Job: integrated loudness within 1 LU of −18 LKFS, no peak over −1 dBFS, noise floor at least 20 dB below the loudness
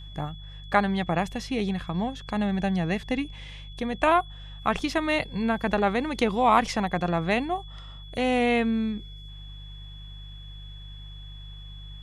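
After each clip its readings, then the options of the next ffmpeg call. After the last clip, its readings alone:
mains hum 50 Hz; hum harmonics up to 150 Hz; level of the hum −40 dBFS; interfering tone 3,400 Hz; level of the tone −47 dBFS; integrated loudness −26.5 LKFS; sample peak −6.5 dBFS; target loudness −18.0 LKFS
→ -af "bandreject=frequency=50:width_type=h:width=4,bandreject=frequency=100:width_type=h:width=4,bandreject=frequency=150:width_type=h:width=4"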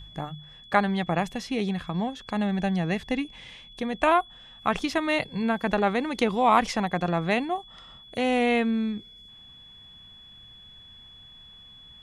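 mains hum none found; interfering tone 3,400 Hz; level of the tone −47 dBFS
→ -af "bandreject=frequency=3400:width=30"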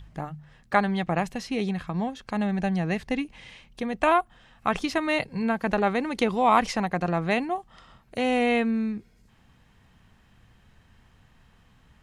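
interfering tone none found; integrated loudness −26.5 LKFS; sample peak −6.5 dBFS; target loudness −18.0 LKFS
→ -af "volume=8.5dB,alimiter=limit=-1dB:level=0:latency=1"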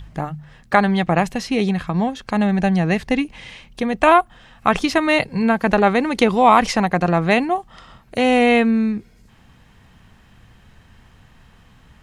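integrated loudness −18.0 LKFS; sample peak −1.0 dBFS; background noise floor −51 dBFS

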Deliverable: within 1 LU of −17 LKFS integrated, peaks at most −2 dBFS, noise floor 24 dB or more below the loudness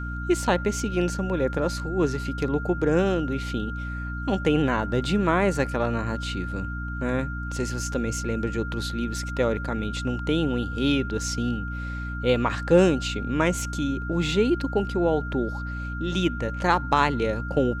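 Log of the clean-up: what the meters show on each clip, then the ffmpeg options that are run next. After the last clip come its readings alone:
mains hum 60 Hz; hum harmonics up to 300 Hz; level of the hum −30 dBFS; interfering tone 1,400 Hz; level of the tone −35 dBFS; integrated loudness −25.5 LKFS; sample peak −6.5 dBFS; target loudness −17.0 LKFS
→ -af "bandreject=frequency=60:width_type=h:width=6,bandreject=frequency=120:width_type=h:width=6,bandreject=frequency=180:width_type=h:width=6,bandreject=frequency=240:width_type=h:width=6,bandreject=frequency=300:width_type=h:width=6"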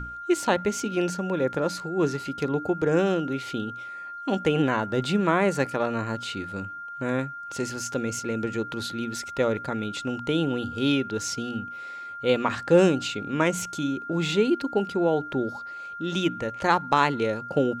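mains hum none found; interfering tone 1,400 Hz; level of the tone −35 dBFS
→ -af "bandreject=frequency=1400:width=30"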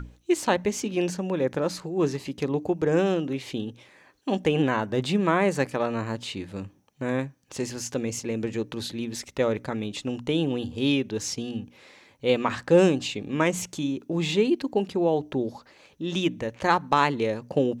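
interfering tone none found; integrated loudness −26.5 LKFS; sample peak −7.0 dBFS; target loudness −17.0 LKFS
→ -af "volume=9.5dB,alimiter=limit=-2dB:level=0:latency=1"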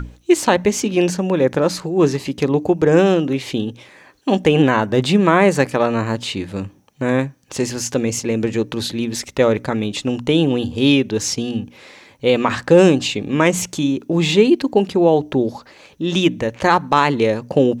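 integrated loudness −17.5 LKFS; sample peak −2.0 dBFS; background noise floor −49 dBFS

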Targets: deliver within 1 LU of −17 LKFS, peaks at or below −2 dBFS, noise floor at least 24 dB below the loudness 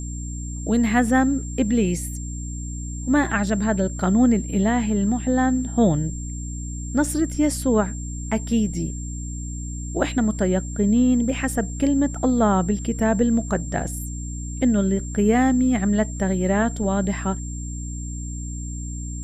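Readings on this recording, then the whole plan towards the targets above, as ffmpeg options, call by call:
mains hum 60 Hz; hum harmonics up to 300 Hz; level of the hum −28 dBFS; interfering tone 7,400 Hz; level of the tone −37 dBFS; integrated loudness −22.5 LKFS; sample peak −5.5 dBFS; target loudness −17.0 LKFS
→ -af "bandreject=frequency=60:width_type=h:width=4,bandreject=frequency=120:width_type=h:width=4,bandreject=frequency=180:width_type=h:width=4,bandreject=frequency=240:width_type=h:width=4,bandreject=frequency=300:width_type=h:width=4"
-af "bandreject=frequency=7400:width=30"
-af "volume=5.5dB,alimiter=limit=-2dB:level=0:latency=1"

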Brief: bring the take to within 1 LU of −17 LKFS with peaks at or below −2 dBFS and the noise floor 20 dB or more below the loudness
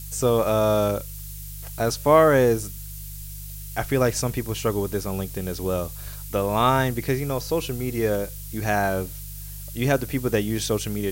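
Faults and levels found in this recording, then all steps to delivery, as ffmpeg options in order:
mains hum 50 Hz; hum harmonics up to 150 Hz; level of the hum −35 dBFS; background noise floor −36 dBFS; target noise floor −44 dBFS; integrated loudness −23.5 LKFS; sample peak −4.5 dBFS; target loudness −17.0 LKFS
→ -af "bandreject=frequency=50:width_type=h:width=4,bandreject=frequency=100:width_type=h:width=4,bandreject=frequency=150:width_type=h:width=4"
-af "afftdn=noise_reduction=8:noise_floor=-36"
-af "volume=6.5dB,alimiter=limit=-2dB:level=0:latency=1"

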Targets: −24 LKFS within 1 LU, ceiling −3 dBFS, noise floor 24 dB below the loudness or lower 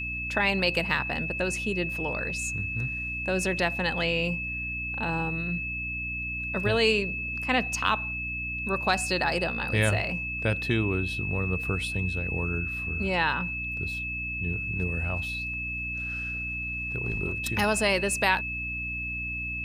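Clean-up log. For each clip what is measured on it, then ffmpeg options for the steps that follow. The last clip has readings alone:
mains hum 60 Hz; hum harmonics up to 300 Hz; level of the hum −36 dBFS; interfering tone 2,600 Hz; level of the tone −31 dBFS; integrated loudness −27.5 LKFS; sample peak −8.5 dBFS; target loudness −24.0 LKFS
→ -af "bandreject=frequency=60:width_type=h:width=6,bandreject=frequency=120:width_type=h:width=6,bandreject=frequency=180:width_type=h:width=6,bandreject=frequency=240:width_type=h:width=6,bandreject=frequency=300:width_type=h:width=6"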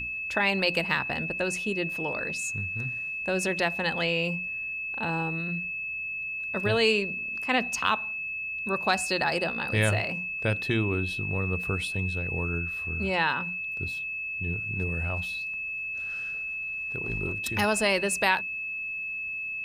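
mains hum none found; interfering tone 2,600 Hz; level of the tone −31 dBFS
→ -af "bandreject=frequency=2600:width=30"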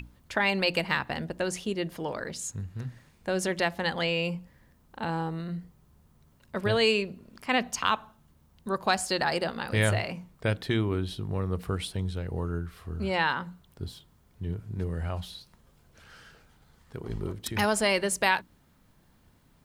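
interfering tone none found; integrated loudness −29.5 LKFS; sample peak −9.0 dBFS; target loudness −24.0 LKFS
→ -af "volume=5.5dB"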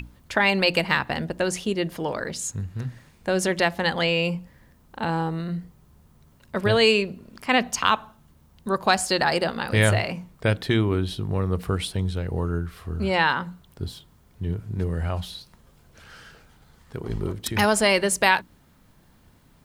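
integrated loudness −24.0 LKFS; sample peak −3.5 dBFS; background noise floor −57 dBFS

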